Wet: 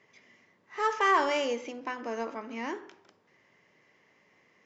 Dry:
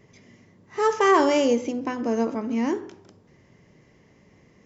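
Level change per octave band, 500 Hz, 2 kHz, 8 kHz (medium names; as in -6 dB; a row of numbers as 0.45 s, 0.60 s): -10.0 dB, -2.0 dB, no reading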